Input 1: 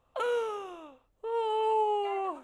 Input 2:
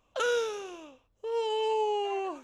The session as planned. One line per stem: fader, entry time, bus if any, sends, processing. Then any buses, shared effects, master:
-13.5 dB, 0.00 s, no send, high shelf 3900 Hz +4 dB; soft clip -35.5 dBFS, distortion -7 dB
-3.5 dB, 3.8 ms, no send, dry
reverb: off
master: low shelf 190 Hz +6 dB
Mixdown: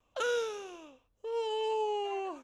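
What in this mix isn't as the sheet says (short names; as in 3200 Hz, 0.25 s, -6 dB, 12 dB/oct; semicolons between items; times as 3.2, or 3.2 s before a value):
stem 1 -13.5 dB -> -23.5 dB; master: missing low shelf 190 Hz +6 dB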